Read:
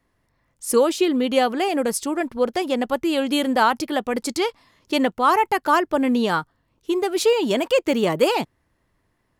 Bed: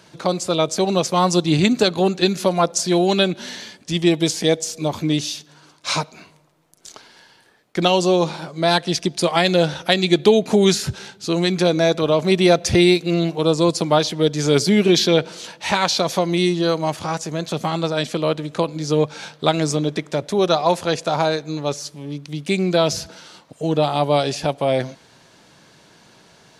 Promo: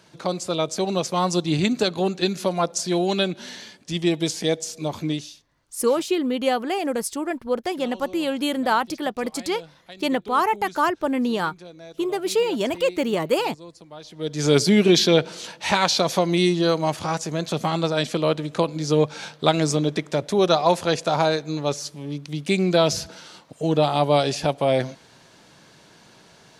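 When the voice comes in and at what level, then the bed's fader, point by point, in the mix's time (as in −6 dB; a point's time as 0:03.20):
5.10 s, −3.0 dB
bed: 0:05.10 −5 dB
0:05.51 −25.5 dB
0:13.95 −25.5 dB
0:14.45 −1 dB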